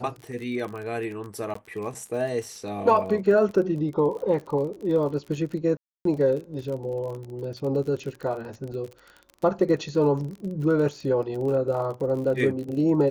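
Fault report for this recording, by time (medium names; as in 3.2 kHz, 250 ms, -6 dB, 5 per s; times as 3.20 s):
crackle 36 per s -33 dBFS
1.54–1.55 s: dropout 14 ms
5.77–6.05 s: dropout 283 ms
8.72 s: dropout 2.8 ms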